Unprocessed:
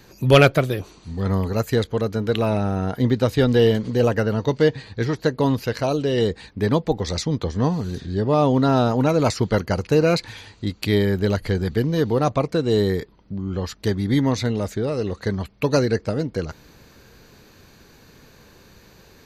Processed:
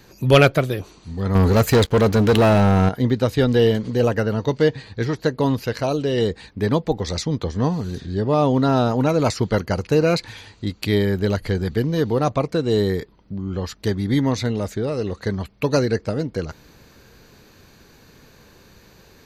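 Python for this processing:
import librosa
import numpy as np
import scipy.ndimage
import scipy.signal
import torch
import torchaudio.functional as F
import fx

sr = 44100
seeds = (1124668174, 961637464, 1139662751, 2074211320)

y = fx.leveller(x, sr, passes=3, at=(1.35, 2.89))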